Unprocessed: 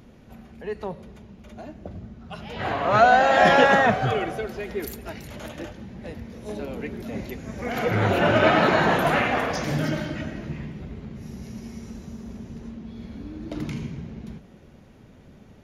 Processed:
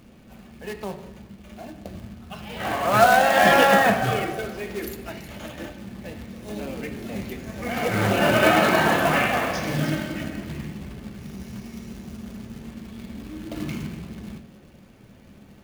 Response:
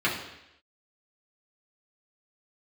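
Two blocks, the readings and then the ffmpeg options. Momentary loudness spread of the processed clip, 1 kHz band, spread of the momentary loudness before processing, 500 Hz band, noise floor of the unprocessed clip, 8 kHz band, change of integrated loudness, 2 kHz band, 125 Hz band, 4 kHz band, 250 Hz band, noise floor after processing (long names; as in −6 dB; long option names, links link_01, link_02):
23 LU, 0.0 dB, 22 LU, 0.0 dB, −50 dBFS, +7.5 dB, +0.5 dB, +1.0 dB, −0.5 dB, +2.5 dB, +1.0 dB, −49 dBFS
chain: -filter_complex "[0:a]acrusher=bits=3:mode=log:mix=0:aa=0.000001,asplit=2[link_01][link_02];[1:a]atrim=start_sample=2205[link_03];[link_02][link_03]afir=irnorm=-1:irlink=0,volume=-15.5dB[link_04];[link_01][link_04]amix=inputs=2:normalize=0,volume=-2dB"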